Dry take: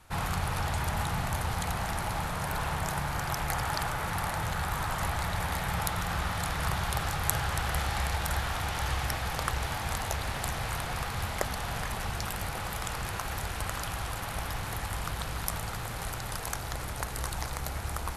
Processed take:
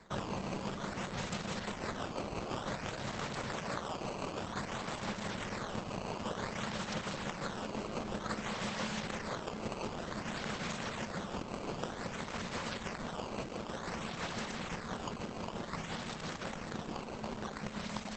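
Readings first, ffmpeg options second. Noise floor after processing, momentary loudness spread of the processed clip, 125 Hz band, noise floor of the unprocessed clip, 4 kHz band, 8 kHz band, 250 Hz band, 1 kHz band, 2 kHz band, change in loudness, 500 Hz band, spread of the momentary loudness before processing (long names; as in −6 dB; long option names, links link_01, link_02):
−44 dBFS, 3 LU, −11.0 dB, −37 dBFS, −6.0 dB, −11.0 dB, +1.0 dB, −8.0 dB, −8.0 dB, −7.0 dB, −1.0 dB, 5 LU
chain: -filter_complex "[0:a]acrossover=split=2400|6000[link_01][link_02][link_03];[link_01]acompressor=threshold=-36dB:ratio=4[link_04];[link_02]acompressor=threshold=-47dB:ratio=4[link_05];[link_03]acompressor=threshold=-47dB:ratio=4[link_06];[link_04][link_05][link_06]amix=inputs=3:normalize=0,tiltshelf=frequency=1100:gain=-7.5,acrossover=split=610[link_07][link_08];[link_07]acontrast=24[link_09];[link_09][link_08]amix=inputs=2:normalize=0,highshelf=frequency=2500:gain=-7,tremolo=f=5.9:d=0.33,asoftclip=type=tanh:threshold=-21.5dB,highpass=41,afreqshift=-280,acrusher=samples=14:mix=1:aa=0.000001:lfo=1:lforange=22.4:lforate=0.54,volume=3dB" -ar 48000 -c:a libopus -b:a 10k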